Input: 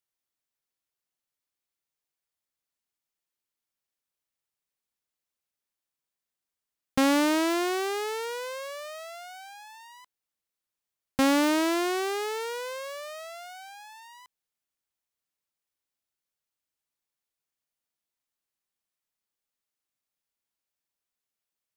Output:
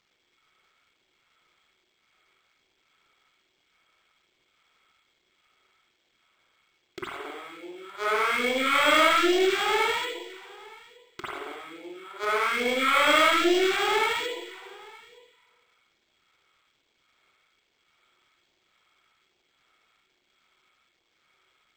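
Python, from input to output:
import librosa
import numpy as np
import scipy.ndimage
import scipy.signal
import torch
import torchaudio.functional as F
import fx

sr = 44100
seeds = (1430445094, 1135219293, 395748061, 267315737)

y = fx.cycle_switch(x, sr, every=2, mode='muted')
y = fx.gate_flip(y, sr, shuts_db=-25.0, range_db=-40)
y = scipy.signal.sosfilt(scipy.signal.butter(2, 110.0, 'highpass', fs=sr, output='sos'), y)
y = fx.low_shelf(y, sr, hz=150.0, db=-11.0)
y = fx.over_compress(y, sr, threshold_db=-44.0, ratio=-1.0)
y = fx.small_body(y, sr, hz=(360.0, 1300.0, 2200.0, 3300.0), ring_ms=30, db=14)
y = fx.fold_sine(y, sr, drive_db=12, ceiling_db=-20.5)
y = fx.low_shelf(y, sr, hz=390.0, db=-11.5)
y = y + 10.0 ** (-22.5 / 20.0) * np.pad(y, (int(917 * sr / 1000.0), 0))[:len(y)]
y = fx.rev_spring(y, sr, rt60_s=1.1, pass_ms=(45, 53), chirp_ms=40, drr_db=-8.5)
y = fx.phaser_stages(y, sr, stages=2, low_hz=140.0, high_hz=1300.0, hz=1.2, feedback_pct=5)
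y = np.interp(np.arange(len(y)), np.arange(len(y))[::4], y[::4])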